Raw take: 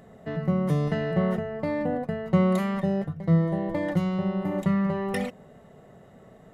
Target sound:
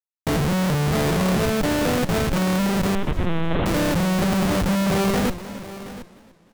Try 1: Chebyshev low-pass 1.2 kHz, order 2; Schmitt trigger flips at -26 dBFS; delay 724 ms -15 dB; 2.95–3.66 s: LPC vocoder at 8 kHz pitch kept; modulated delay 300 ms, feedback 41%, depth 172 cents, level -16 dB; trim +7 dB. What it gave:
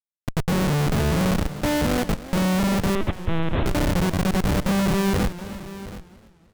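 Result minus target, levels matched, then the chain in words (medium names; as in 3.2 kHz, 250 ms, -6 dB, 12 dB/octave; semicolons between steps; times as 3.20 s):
Schmitt trigger: distortion +4 dB
Chebyshev low-pass 1.2 kHz, order 2; Schmitt trigger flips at -34 dBFS; delay 724 ms -15 dB; 2.95–3.66 s: LPC vocoder at 8 kHz pitch kept; modulated delay 300 ms, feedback 41%, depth 172 cents, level -16 dB; trim +7 dB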